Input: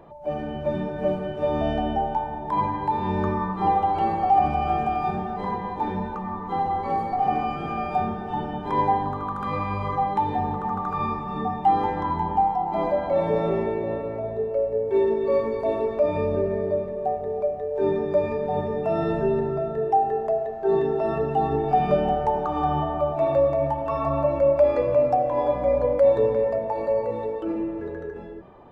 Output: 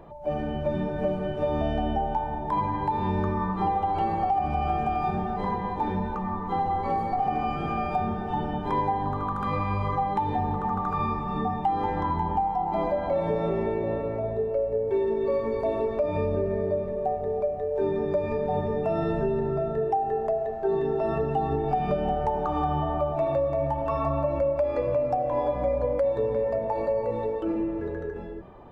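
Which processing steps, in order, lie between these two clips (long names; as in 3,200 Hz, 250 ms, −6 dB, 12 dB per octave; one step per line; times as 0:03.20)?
low-shelf EQ 88 Hz +8 dB
downward compressor, threshold −22 dBFS, peak gain reduction 9 dB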